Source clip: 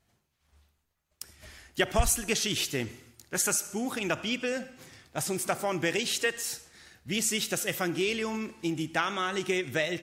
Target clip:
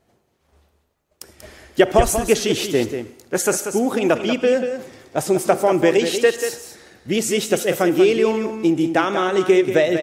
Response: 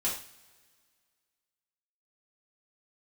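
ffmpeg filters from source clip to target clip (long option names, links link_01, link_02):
-af "equalizer=frequency=450:width=0.59:gain=13.5,aecho=1:1:188:0.376,volume=3dB"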